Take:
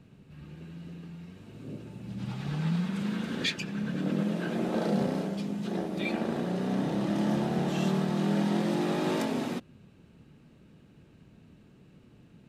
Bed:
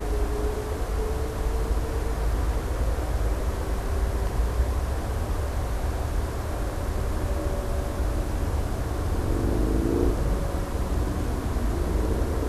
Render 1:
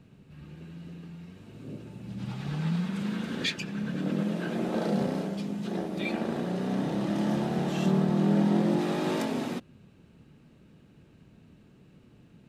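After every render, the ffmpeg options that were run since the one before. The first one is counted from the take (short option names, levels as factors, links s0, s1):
-filter_complex "[0:a]asettb=1/sr,asplit=3[s0][s1][s2];[s0]atrim=end=7.864[s3];[s1]atrim=start=7.86:end=8.79,asetpts=PTS-STARTPTS,afade=t=in:d=0.004:c=qsin,afade=t=out:st=0.926:d=0.004:c=qsin,tiltshelf=f=1100:g=4[s4];[s2]atrim=start=8.786[s5];[s3][s4]acrossfade=d=0.004:c1=hsin:c2=qsin[s6];[s6][s5]acrossfade=d=0.004:c1=qsin:c2=hsin"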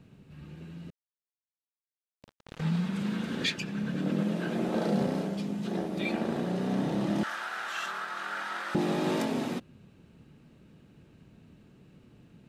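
-filter_complex "[0:a]asettb=1/sr,asplit=3[s0][s1][s2];[s0]atrim=end=0.904[s3];[s1]atrim=start=0.9:end=2.61,asetpts=PTS-STARTPTS,afade=t=in:d=0.004:c=qsin,afade=t=out:st=1.706:d=0.004:c=qsin,acrusher=bits=3:mix=0:aa=0.5[s4];[s2]atrim=start=2.606[s5];[s3][s4]acrossfade=d=0.004:c1=hsin:c2=qsin[s6];[s6][s5]acrossfade=d=0.004:c1=qsin:c2=hsin,asettb=1/sr,asplit=3[s7][s8][s9];[s7]atrim=end=7.234[s10];[s8]atrim=start=7.23:end=8.75,asetpts=PTS-STARTPTS,afade=t=in:d=0.004:c=qsin,afade=t=out:st=1.516:d=0.004:c=qsin,highpass=f=1400:t=q:w=4.9[s11];[s9]atrim=start=8.746[s12];[s10][s11]acrossfade=d=0.004:c1=hsin:c2=qsin[s13];[s13][s12]acrossfade=d=0.004:c1=qsin:c2=hsin"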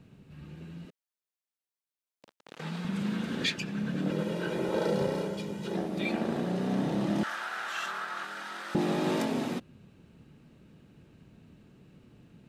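-filter_complex "[0:a]asettb=1/sr,asplit=3[s0][s1][s2];[s0]atrim=end=0.854[s3];[s1]atrim=start=0.85:end=2.85,asetpts=PTS-STARTPTS,afade=t=in:d=0.004:c=qsin,afade=t=out:st=1.996:d=0.004:c=qsin,highpass=280[s4];[s2]atrim=start=2.846[s5];[s3][s4]acrossfade=d=0.004:c1=hsin:c2=qsin[s6];[s6][s5]acrossfade=d=0.004:c1=qsin:c2=hsin,asettb=1/sr,asplit=3[s7][s8][s9];[s7]atrim=end=4.104[s10];[s8]atrim=start=4.1:end=5.75,asetpts=PTS-STARTPTS,afade=t=in:d=0.004:c=qsin,afade=t=out:st=1.646:d=0.004:c=qsin,aecho=1:1:2.1:0.65,atrim=end_sample=72765[s11];[s9]atrim=start=5.746[s12];[s10][s11]acrossfade=d=0.004:c1=hsin:c2=qsin[s13];[s13][s12]acrossfade=d=0.004:c1=qsin:c2=hsin,asettb=1/sr,asplit=3[s14][s15][s16];[s14]atrim=end=8.244[s17];[s15]atrim=start=8.24:end=8.75,asetpts=PTS-STARTPTS,afade=t=in:d=0.004:c=qsin,afade=t=out:st=0.506:d=0.004:c=qsin,acrossover=split=450|3000[s18][s19][s20];[s19]acompressor=threshold=0.0126:ratio=6:attack=3.2:release=140:knee=2.83:detection=peak[s21];[s18][s21][s20]amix=inputs=3:normalize=0[s22];[s16]atrim=start=8.746[s23];[s17][s22]acrossfade=d=0.004:c1=hsin:c2=qsin[s24];[s24][s23]acrossfade=d=0.004:c1=qsin:c2=hsin"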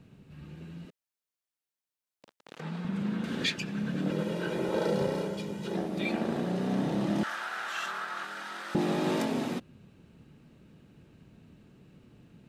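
-filter_complex "[0:a]asettb=1/sr,asplit=3[s0][s1][s2];[s0]atrim=end=2.604[s3];[s1]atrim=start=2.6:end=3.24,asetpts=PTS-STARTPTS,afade=t=in:d=0.004:c=qsin,afade=t=out:st=0.636:d=0.004:c=qsin,highshelf=f=2600:g=-9.5[s4];[s2]atrim=start=3.236[s5];[s3][s4]acrossfade=d=0.004:c1=hsin:c2=qsin[s6];[s6][s5]acrossfade=d=0.004:c1=qsin:c2=hsin"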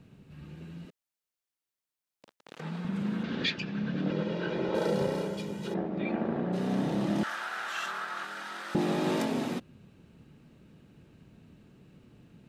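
-filter_complex "[0:a]asettb=1/sr,asplit=3[s0][s1][s2];[s0]atrim=end=3.234[s3];[s1]atrim=start=3.23:end=4.75,asetpts=PTS-STARTPTS,afade=t=in:d=0.004:c=qsin,afade=t=out:st=1.516:d=0.004:c=qsin,lowpass=f=5100:w=0.5412,lowpass=f=5100:w=1.3066[s4];[s2]atrim=start=4.746[s5];[s3][s4]acrossfade=d=0.004:c1=hsin:c2=qsin[s6];[s6][s5]acrossfade=d=0.004:c1=qsin:c2=hsin,asplit=3[s7][s8][s9];[s7]afade=t=out:st=5.73:d=0.02[s10];[s8]lowpass=1900,afade=t=in:st=5.73:d=0.02,afade=t=out:st=6.52:d=0.02[s11];[s9]afade=t=in:st=6.52:d=0.02[s12];[s10][s11][s12]amix=inputs=3:normalize=0"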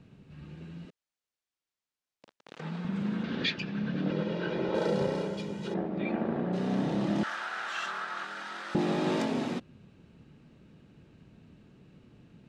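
-af "lowpass=7000"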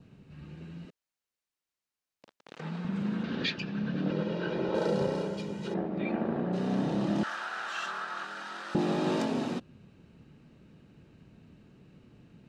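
-af "adynamicequalizer=threshold=0.00141:dfrequency=2100:dqfactor=5:tfrequency=2100:tqfactor=5:attack=5:release=100:ratio=0.375:range=3:mode=cutabove:tftype=bell,bandreject=f=3400:w=24"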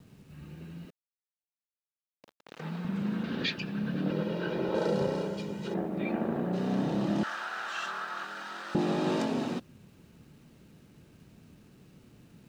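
-af "acrusher=bits=10:mix=0:aa=0.000001"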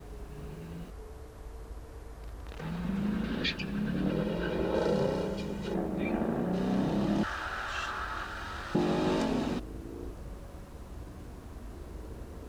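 -filter_complex "[1:a]volume=0.119[s0];[0:a][s0]amix=inputs=2:normalize=0"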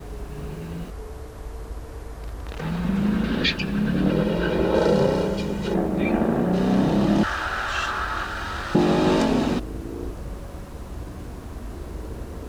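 -af "volume=2.99"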